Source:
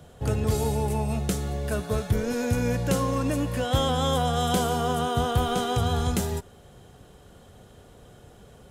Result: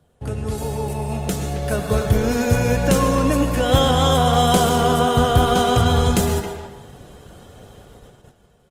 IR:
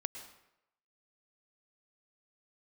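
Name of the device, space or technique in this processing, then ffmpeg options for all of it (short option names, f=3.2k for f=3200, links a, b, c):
speakerphone in a meeting room: -filter_complex "[1:a]atrim=start_sample=2205[a];[0:a][a]afir=irnorm=-1:irlink=0,asplit=2[b][c];[c]adelay=270,highpass=300,lowpass=3.4k,asoftclip=type=hard:threshold=-22dB,volume=-9dB[d];[b][d]amix=inputs=2:normalize=0,dynaudnorm=f=330:g=9:m=9.5dB,agate=range=-9dB:threshold=-44dB:ratio=16:detection=peak" -ar 48000 -c:a libopus -b:a 24k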